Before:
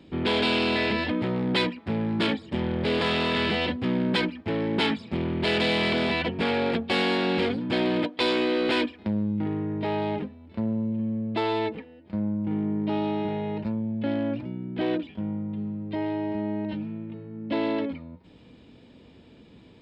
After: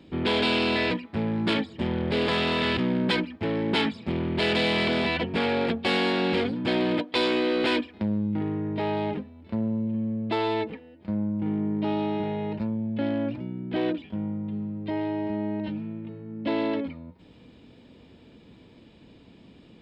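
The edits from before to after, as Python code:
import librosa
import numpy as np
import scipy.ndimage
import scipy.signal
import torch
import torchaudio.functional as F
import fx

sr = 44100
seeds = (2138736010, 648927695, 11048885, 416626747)

y = fx.edit(x, sr, fx.cut(start_s=0.91, length_s=0.73),
    fx.cut(start_s=3.5, length_s=0.32), tone=tone)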